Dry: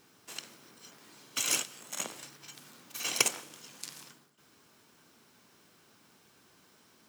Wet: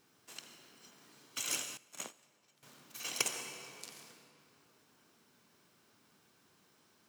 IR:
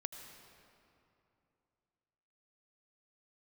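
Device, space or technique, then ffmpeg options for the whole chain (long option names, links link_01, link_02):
stairwell: -filter_complex "[1:a]atrim=start_sample=2205[link_01];[0:a][link_01]afir=irnorm=-1:irlink=0,asettb=1/sr,asplit=3[link_02][link_03][link_04];[link_02]atrim=end=1.774[link_05];[link_03]atrim=start=1.77:end=2.63,asetpts=PTS-STARTPTS,afade=type=in:duration=0.004:curve=qsin,afade=type=out:start_time=0.856:duration=0.004:curve=qsin,agate=range=-16dB:threshold=-40dB:ratio=16:detection=peak[link_06];[link_04]atrim=start=2.626[link_07];[link_05][link_06]acrossfade=duration=0.004:curve1=hsin:curve2=qsin[link_08];[link_08][link_07]acrossfade=duration=0.004:curve1=qsin:curve2=hsin,volume=-4dB"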